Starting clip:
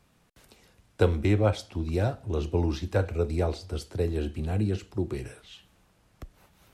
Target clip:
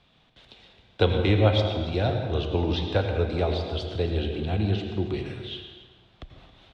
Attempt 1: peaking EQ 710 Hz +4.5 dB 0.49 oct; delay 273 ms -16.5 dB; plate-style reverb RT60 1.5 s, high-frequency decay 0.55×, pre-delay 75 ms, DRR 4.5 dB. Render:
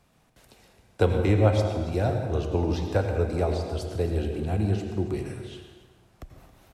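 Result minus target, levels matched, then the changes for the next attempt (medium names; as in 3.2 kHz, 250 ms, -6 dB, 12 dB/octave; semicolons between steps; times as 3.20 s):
4 kHz band -10.0 dB
add first: resonant low-pass 3.5 kHz, resonance Q 4.9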